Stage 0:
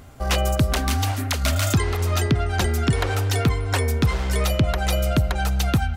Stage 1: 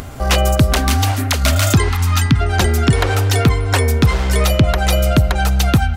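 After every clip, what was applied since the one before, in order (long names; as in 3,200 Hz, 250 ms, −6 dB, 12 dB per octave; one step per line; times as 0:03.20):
gain on a spectral selection 0:01.89–0:02.41, 320–760 Hz −17 dB
upward compression, threshold −30 dBFS
level +7 dB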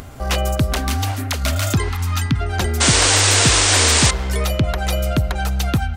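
sound drawn into the spectrogram noise, 0:02.80–0:04.11, 250–9,300 Hz −10 dBFS
level −5.5 dB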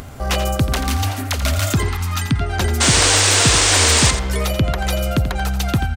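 in parallel at −10 dB: soft clipping −18 dBFS, distortion −9 dB
on the sum: single-tap delay 86 ms −10.5 dB
level −1 dB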